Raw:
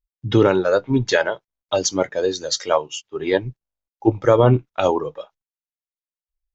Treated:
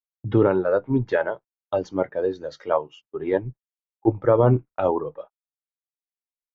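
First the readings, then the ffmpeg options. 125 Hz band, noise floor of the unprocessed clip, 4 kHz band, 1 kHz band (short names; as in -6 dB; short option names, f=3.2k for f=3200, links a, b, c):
-3.0 dB, under -85 dBFS, under -20 dB, -4.0 dB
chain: -af "agate=range=-35dB:threshold=-36dB:ratio=16:detection=peak,lowpass=1.4k,volume=-3dB"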